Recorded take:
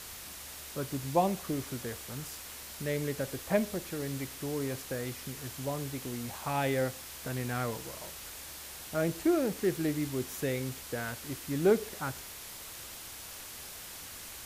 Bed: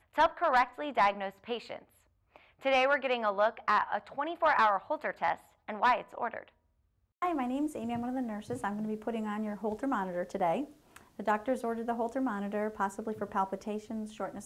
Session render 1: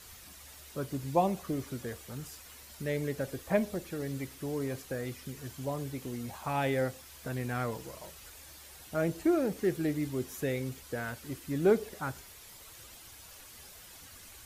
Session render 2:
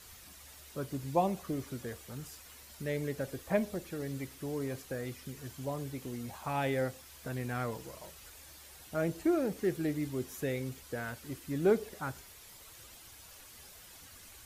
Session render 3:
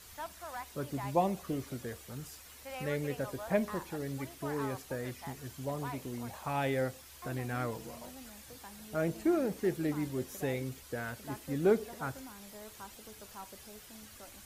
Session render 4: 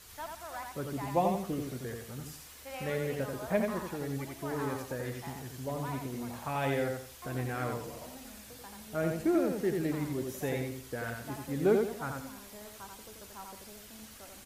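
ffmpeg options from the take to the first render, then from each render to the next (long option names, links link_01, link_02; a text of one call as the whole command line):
ffmpeg -i in.wav -af "afftdn=noise_reduction=9:noise_floor=-46" out.wav
ffmpeg -i in.wav -af "volume=-2dB" out.wav
ffmpeg -i in.wav -i bed.wav -filter_complex "[1:a]volume=-17dB[link_01];[0:a][link_01]amix=inputs=2:normalize=0" out.wav
ffmpeg -i in.wav -af "aecho=1:1:87|174|261|348:0.631|0.189|0.0568|0.017" out.wav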